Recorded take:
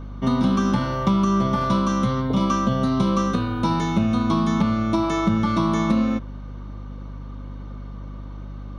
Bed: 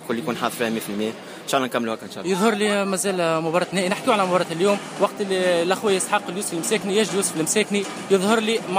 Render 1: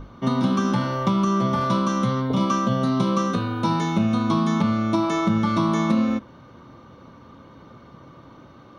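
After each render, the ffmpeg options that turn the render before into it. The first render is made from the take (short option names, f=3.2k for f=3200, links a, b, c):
-af "bandreject=f=50:t=h:w=6,bandreject=f=100:t=h:w=6,bandreject=f=150:t=h:w=6,bandreject=f=200:t=h:w=6,bandreject=f=250:t=h:w=6,bandreject=f=300:t=h:w=6"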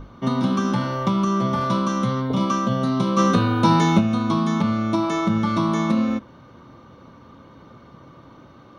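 -filter_complex "[0:a]asplit=3[a][b][c];[a]afade=t=out:st=3.17:d=0.02[d];[b]acontrast=59,afade=t=in:st=3.17:d=0.02,afade=t=out:st=3.99:d=0.02[e];[c]afade=t=in:st=3.99:d=0.02[f];[d][e][f]amix=inputs=3:normalize=0"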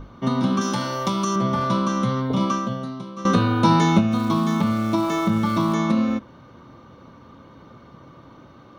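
-filter_complex "[0:a]asettb=1/sr,asplit=3[a][b][c];[a]atrim=end=0.614[d];[b]atrim=start=0.61:end=1.36,asetpts=PTS-STARTPTS,afade=t=in:d=0.004:c=qsin,afade=t=out:st=0.746:d=0.004:c=qsin,bass=f=250:g=-6,treble=f=4k:g=12[e];[c]atrim=start=1.356[f];[d][e]acrossfade=d=0.004:c1=hsin:c2=qsin[g];[g][f]acrossfade=d=0.004:c1=qsin:c2=hsin,asplit=3[h][i][j];[h]afade=t=out:st=4.11:d=0.02[k];[i]aeval=exprs='val(0)*gte(abs(val(0)),0.0158)':c=same,afade=t=in:st=4.11:d=0.02,afade=t=out:st=5.73:d=0.02[l];[j]afade=t=in:st=5.73:d=0.02[m];[k][l][m]amix=inputs=3:normalize=0,asplit=2[n][o];[n]atrim=end=3.25,asetpts=PTS-STARTPTS,afade=t=out:st=2.47:d=0.78:c=qua:silence=0.149624[p];[o]atrim=start=3.25,asetpts=PTS-STARTPTS,afade=t=in:d=0.004:c=hsin:silence=0.149624[q];[p][q]concat=n=2:v=0:a=1"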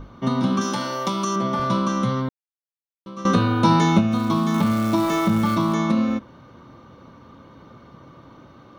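-filter_complex "[0:a]asettb=1/sr,asplit=3[a][b][c];[a]atrim=end=0.644[d];[b]atrim=start=0.64:end=1.6,asetpts=PTS-STARTPTS,afade=t=in:d=0.004:c=qsin,afade=t=out:st=0.956:d=0.004:c=qsin,highpass=180[e];[c]atrim=start=1.596[f];[d][e]acrossfade=d=0.004:c1=hsin:c2=qsin[g];[g][f]acrossfade=d=0.004:c1=qsin:c2=hsin,asettb=1/sr,asplit=3[h][i][j];[h]atrim=end=4.544[k];[i]atrim=start=4.54:end=5.55,asetpts=PTS-STARTPTS,afade=t=in:d=0.004:c=qsin,afade=t=out:st=1.006:d=0.004:c=qsin,aeval=exprs='val(0)+0.5*0.0355*sgn(val(0))':c=same[l];[j]atrim=start=5.546[m];[k][l]acrossfade=d=0.004:c1=hsin:c2=qsin[n];[n][m]acrossfade=d=0.004:c1=qsin:c2=hsin,asplit=3[o][p][q];[o]atrim=end=2.29,asetpts=PTS-STARTPTS,afade=t=out:st=2.286:d=0.004:c=hsin[r];[p]atrim=start=2.29:end=3.06,asetpts=PTS-STARTPTS,volume=0[s];[q]atrim=start=3.06,asetpts=PTS-STARTPTS,afade=t=in:d=0.004:c=hsin[t];[r][s][t]concat=n=3:v=0:a=1"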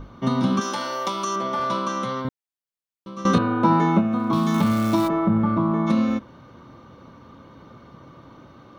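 -filter_complex "[0:a]asettb=1/sr,asplit=3[a][b][c];[a]atrim=end=0.604[d];[b]atrim=start=0.6:end=2.25,asetpts=PTS-STARTPTS,afade=t=in:d=0.004:c=qsin,afade=t=out:st=1.646:d=0.004:c=qsin,bass=f=250:g=-14,treble=f=4k:g=-2[e];[c]atrim=start=2.246[f];[d][e]acrossfade=d=0.004:c1=hsin:c2=qsin[g];[g][f]acrossfade=d=0.004:c1=qsin:c2=hsin,asettb=1/sr,asplit=3[h][i][j];[h]atrim=end=3.384[k];[i]atrim=start=3.38:end=4.33,asetpts=PTS-STARTPTS,afade=t=in:d=0.004:c=qsin,afade=t=out:st=0.946:d=0.004:c=qsin,acrossover=split=150 2100:gain=0.178 1 0.141[l][m][n];[l][m][n]amix=inputs=3:normalize=0[o];[j]atrim=start=4.326[p];[k][o]acrossfade=d=0.004:c1=hsin:c2=qsin[q];[q][p]acrossfade=d=0.004:c1=qsin:c2=hsin,asplit=3[r][s][t];[r]afade=t=out:st=5.07:d=0.02[u];[s]lowpass=1.2k,afade=t=in:st=5.07:d=0.02,afade=t=out:st=5.86:d=0.02[v];[t]afade=t=in:st=5.86:d=0.02[w];[u][v][w]amix=inputs=3:normalize=0"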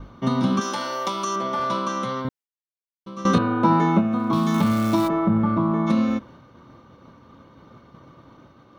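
-af "agate=range=-33dB:threshold=-42dB:ratio=3:detection=peak"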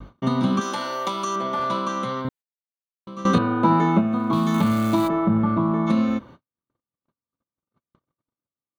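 -af "bandreject=f=5.4k:w=5.3,agate=range=-49dB:threshold=-42dB:ratio=16:detection=peak"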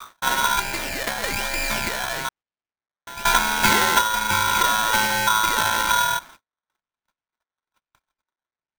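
-af "acrusher=samples=18:mix=1:aa=0.000001:lfo=1:lforange=18:lforate=1.1,aeval=exprs='val(0)*sgn(sin(2*PI*1200*n/s))':c=same"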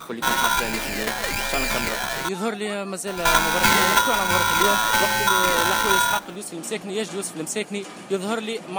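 -filter_complex "[1:a]volume=-7dB[a];[0:a][a]amix=inputs=2:normalize=0"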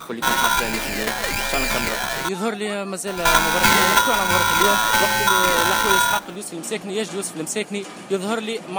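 -af "volume=2dB"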